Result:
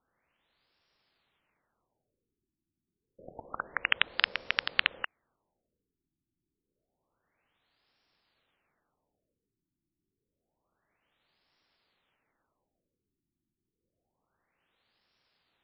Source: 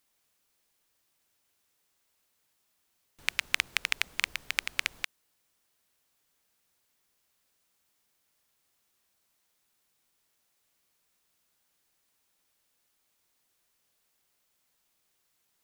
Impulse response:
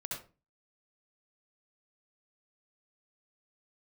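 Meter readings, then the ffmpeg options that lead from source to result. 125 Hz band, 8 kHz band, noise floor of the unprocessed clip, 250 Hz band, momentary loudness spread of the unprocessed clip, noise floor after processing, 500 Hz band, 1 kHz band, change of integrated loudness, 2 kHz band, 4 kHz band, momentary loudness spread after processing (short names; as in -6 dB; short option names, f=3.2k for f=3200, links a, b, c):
n/a, under -35 dB, -75 dBFS, +6.0 dB, 6 LU, under -85 dBFS, +7.5 dB, +5.0 dB, +1.0 dB, +0.5 dB, +1.0 dB, 13 LU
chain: -af "asoftclip=type=tanh:threshold=-9dB,aeval=exprs='val(0)*sin(2*PI*520*n/s)':c=same,afftfilt=real='re*lt(b*sr/1024,360*pow(5700/360,0.5+0.5*sin(2*PI*0.28*pts/sr)))':imag='im*lt(b*sr/1024,360*pow(5700/360,0.5+0.5*sin(2*PI*0.28*pts/sr)))':win_size=1024:overlap=0.75,volume=8dB"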